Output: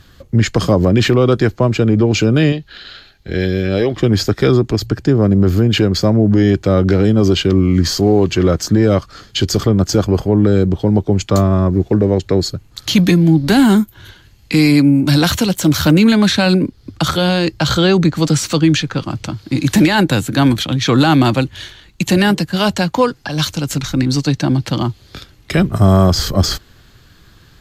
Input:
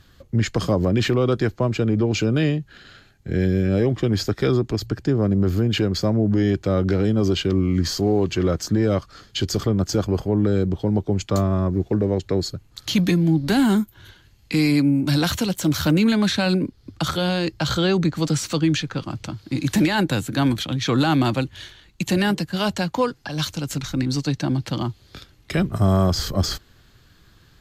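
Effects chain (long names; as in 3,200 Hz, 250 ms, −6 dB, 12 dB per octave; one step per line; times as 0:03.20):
0:02.52–0:03.97: octave-band graphic EQ 125/250/4,000/8,000 Hz −9/−4/+10/−8 dB
level +7.5 dB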